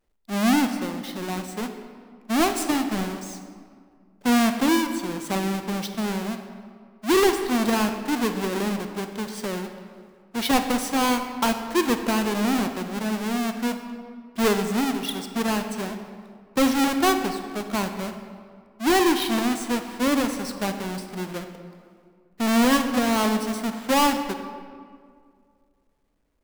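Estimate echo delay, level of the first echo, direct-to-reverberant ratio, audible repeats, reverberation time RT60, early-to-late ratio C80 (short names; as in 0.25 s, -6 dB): none, none, 7.0 dB, none, 2.1 s, 9.0 dB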